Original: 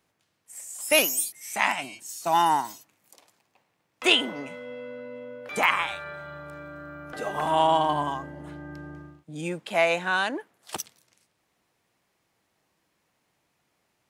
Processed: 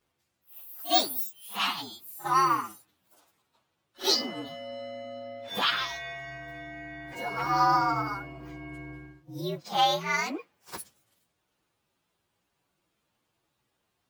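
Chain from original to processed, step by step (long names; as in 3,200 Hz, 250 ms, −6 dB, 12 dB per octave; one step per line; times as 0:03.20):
partials spread apart or drawn together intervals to 118%
echo ahead of the sound 55 ms −17 dB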